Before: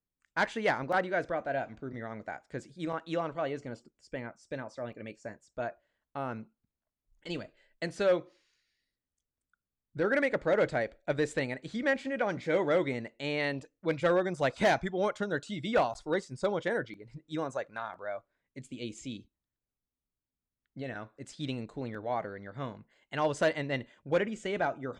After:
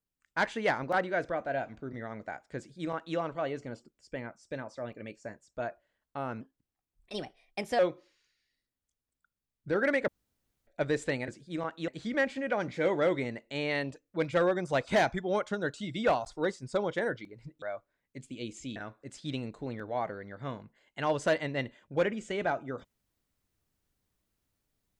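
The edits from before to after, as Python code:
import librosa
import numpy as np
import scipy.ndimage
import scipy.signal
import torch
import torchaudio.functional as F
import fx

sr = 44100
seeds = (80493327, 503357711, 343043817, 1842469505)

y = fx.edit(x, sr, fx.duplicate(start_s=2.57, length_s=0.6, to_s=11.57),
    fx.speed_span(start_s=6.41, length_s=1.67, speed=1.21),
    fx.room_tone_fill(start_s=10.37, length_s=0.59),
    fx.cut(start_s=17.31, length_s=0.72),
    fx.cut(start_s=19.17, length_s=1.74), tone=tone)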